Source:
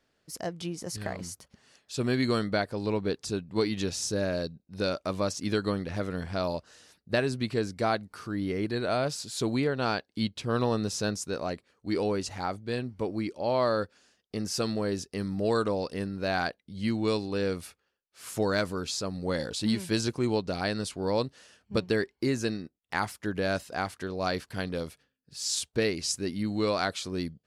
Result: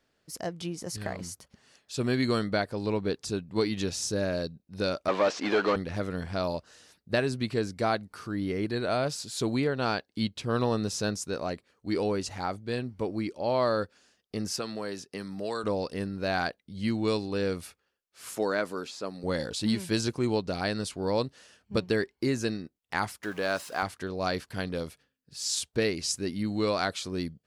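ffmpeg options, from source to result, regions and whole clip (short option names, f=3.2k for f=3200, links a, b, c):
-filter_complex "[0:a]asettb=1/sr,asplit=3[a][b][c];[a]atrim=end=5.084[d];[b]atrim=start=5.08:end=5.76,asetpts=PTS-STARTPTS,afade=t=in:d=0.004:c=qsin,afade=t=out:st=0.676:d=0.004:c=qsin,acrusher=bits=5:mode=log:mix=0:aa=0.000001,asplit=2[e][f];[f]highpass=f=720:p=1,volume=27dB,asoftclip=type=tanh:threshold=-14dB[g];[e][g]amix=inputs=2:normalize=0,lowpass=f=1.5k:p=1,volume=-6dB,highpass=320,lowpass=4.6k[h];[c]atrim=start=5.756[i];[d][h]acrossfade=d=0.004:c1=hsin:c2=qsin[j];[j][i]acrossfade=d=0.004:c1=qsin:c2=hsin,asettb=1/sr,asplit=3[k][l][m];[k]atrim=end=14.564[n];[l]atrim=start=14.56:end=15.64,asetpts=PTS-STARTPTS,afade=t=in:d=0.004:c=qsin,afade=t=out:st=1.076:d=0.004:c=qsin,highpass=140,acrossover=split=630|3400[o][p][q];[o]acompressor=threshold=-36dB:ratio=4[r];[p]acompressor=threshold=-34dB:ratio=4[s];[q]acompressor=threshold=-45dB:ratio=4[t];[r][s][t]amix=inputs=3:normalize=0[u];[m]atrim=start=15.636[v];[n][u]acrossfade=d=0.004:c1=hsin:c2=qsin[w];[w][v]acrossfade=d=0.004:c1=qsin:c2=hsin,asettb=1/sr,asplit=3[x][y][z];[x]atrim=end=18.354[aa];[y]atrim=start=18.35:end=19.24,asetpts=PTS-STARTPTS,afade=t=in:d=0.004:c=qsin,afade=t=out:st=0.886:d=0.004:c=qsin,acrossover=split=2800[ab][ac];[ac]acompressor=threshold=-44dB:ratio=4:attack=1:release=60[ad];[ab][ad]amix=inputs=2:normalize=0,highpass=260[ae];[z]atrim=start=19.236[af];[aa][ae]acrossfade=d=0.004:c1=hsin:c2=qsin[ag];[ag][af]acrossfade=d=0.004:c1=qsin:c2=hsin,asettb=1/sr,asplit=3[ah][ai][aj];[ah]atrim=end=23.234[ak];[ai]atrim=start=23.23:end=23.83,asetpts=PTS-STARTPTS,afade=t=in:d=0.004:c=qsin,afade=t=out:st=0.596:d=0.004:c=qsin,aeval=exprs='val(0)+0.5*0.00708*sgn(val(0))':c=same,highpass=f=400:p=1,equalizer=f=1.1k:w=2.1:g=5.5[al];[aj]atrim=start=23.826[am];[ak][al]acrossfade=d=0.004:c1=hsin:c2=qsin[an];[an][am]acrossfade=d=0.004:c1=qsin:c2=hsin"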